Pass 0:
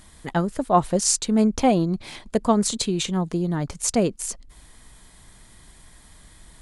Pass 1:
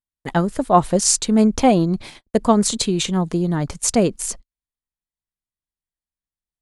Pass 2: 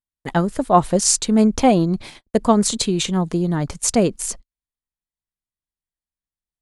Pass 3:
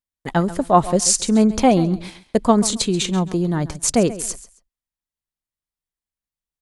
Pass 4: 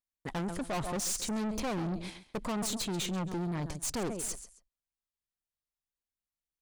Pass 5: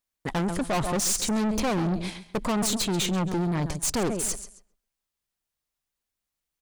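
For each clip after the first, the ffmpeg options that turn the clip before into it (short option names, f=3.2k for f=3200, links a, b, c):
-af "agate=range=-52dB:threshold=-36dB:ratio=16:detection=peak,volume=4dB"
-af anull
-af "aecho=1:1:135|270:0.158|0.0349"
-af "aeval=exprs='(tanh(20*val(0)+0.3)-tanh(0.3))/20':c=same,volume=-5.5dB"
-filter_complex "[0:a]asplit=2[a][b];[b]adelay=130,lowpass=f=2.7k:p=1,volume=-21dB,asplit=2[c][d];[d]adelay=130,lowpass=f=2.7k:p=1,volume=0.35,asplit=2[e][f];[f]adelay=130,lowpass=f=2.7k:p=1,volume=0.35[g];[a][c][e][g]amix=inputs=4:normalize=0,volume=8dB"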